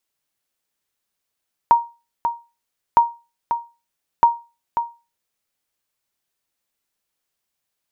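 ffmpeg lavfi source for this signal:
-f lavfi -i "aevalsrc='0.596*(sin(2*PI*938*mod(t,1.26))*exp(-6.91*mod(t,1.26)/0.29)+0.376*sin(2*PI*938*max(mod(t,1.26)-0.54,0))*exp(-6.91*max(mod(t,1.26)-0.54,0)/0.29))':d=3.78:s=44100"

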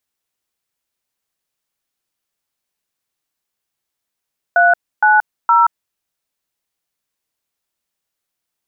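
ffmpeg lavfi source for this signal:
-f lavfi -i "aevalsrc='0.299*clip(min(mod(t,0.465),0.177-mod(t,0.465))/0.002,0,1)*(eq(floor(t/0.465),0)*(sin(2*PI*697*mod(t,0.465))+sin(2*PI*1477*mod(t,0.465)))+eq(floor(t/0.465),1)*(sin(2*PI*852*mod(t,0.465))+sin(2*PI*1477*mod(t,0.465)))+eq(floor(t/0.465),2)*(sin(2*PI*941*mod(t,0.465))+sin(2*PI*1336*mod(t,0.465))))':d=1.395:s=44100"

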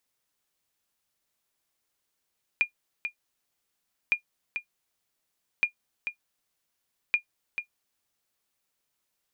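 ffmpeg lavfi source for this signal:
-f lavfi -i "aevalsrc='0.211*(sin(2*PI*2420*mod(t,1.51))*exp(-6.91*mod(t,1.51)/0.1)+0.376*sin(2*PI*2420*max(mod(t,1.51)-0.44,0))*exp(-6.91*max(mod(t,1.51)-0.44,0)/0.1))':d=6.04:s=44100"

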